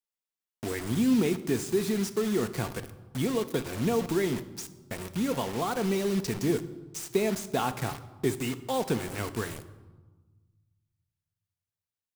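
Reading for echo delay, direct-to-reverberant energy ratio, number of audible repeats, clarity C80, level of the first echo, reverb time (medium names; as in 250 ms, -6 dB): no echo, 10.0 dB, no echo, 16.5 dB, no echo, 1.3 s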